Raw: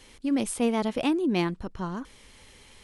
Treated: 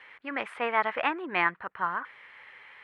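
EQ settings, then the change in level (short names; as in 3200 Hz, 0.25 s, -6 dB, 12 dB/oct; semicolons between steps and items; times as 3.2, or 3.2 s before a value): weighting filter A; dynamic EQ 1300 Hz, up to +4 dB, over -45 dBFS, Q 1; EQ curve 150 Hz 0 dB, 230 Hz -9 dB, 1900 Hz +11 dB, 6000 Hz -26 dB; 0.0 dB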